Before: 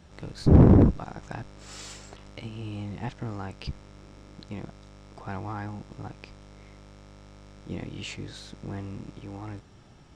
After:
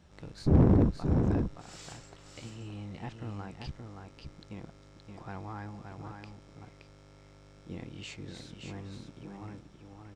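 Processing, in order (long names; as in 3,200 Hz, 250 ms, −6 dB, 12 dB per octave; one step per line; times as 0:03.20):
single-tap delay 572 ms −5.5 dB
level −6.5 dB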